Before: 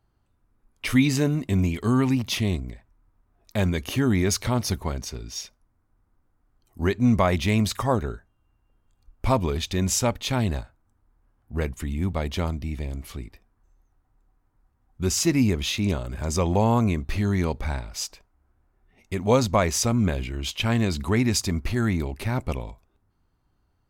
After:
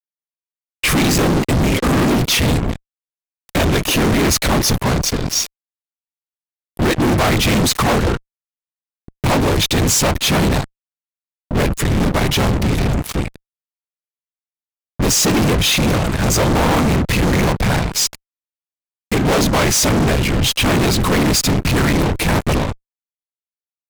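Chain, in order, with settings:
random phases in short frames
fuzz pedal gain 40 dB, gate −40 dBFS

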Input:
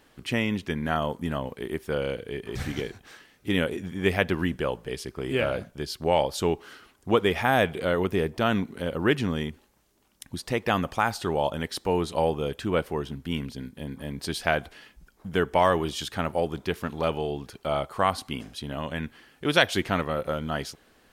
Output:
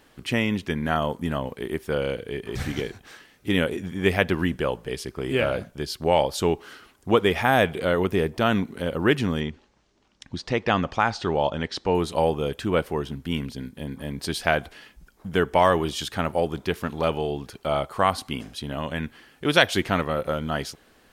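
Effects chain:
0:09.40–0:11.95: low-pass filter 6,200 Hz 24 dB per octave
level +2.5 dB

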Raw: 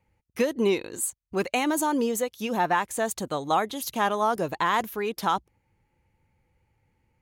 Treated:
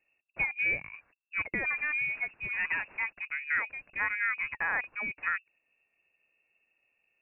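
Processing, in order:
0:01.73–0:03.03: linear delta modulator 64 kbit/s, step −42.5 dBFS
voice inversion scrambler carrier 2,700 Hz
level −6.5 dB

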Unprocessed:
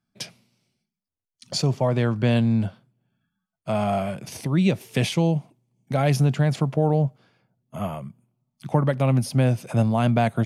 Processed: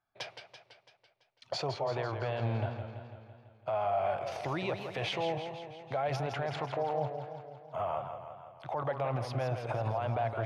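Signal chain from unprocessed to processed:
drawn EQ curve 110 Hz 0 dB, 210 Hz −15 dB, 350 Hz +2 dB, 750 Hz +14 dB, 3,800 Hz +2 dB, 9,500 Hz −17 dB
brickwall limiter −17 dBFS, peak gain reduction 16.5 dB
feedback echo with a swinging delay time 167 ms, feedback 61%, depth 122 cents, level −8 dB
level −8 dB

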